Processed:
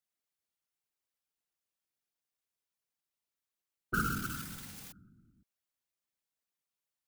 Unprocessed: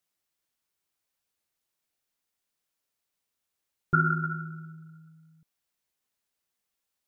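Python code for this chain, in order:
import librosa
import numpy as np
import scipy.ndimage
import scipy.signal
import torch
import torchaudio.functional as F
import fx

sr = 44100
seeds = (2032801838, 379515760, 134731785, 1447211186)

y = fx.crossing_spikes(x, sr, level_db=-20.5, at=(3.94, 4.92))
y = fx.whisperise(y, sr, seeds[0])
y = y * librosa.db_to_amplitude(-8.5)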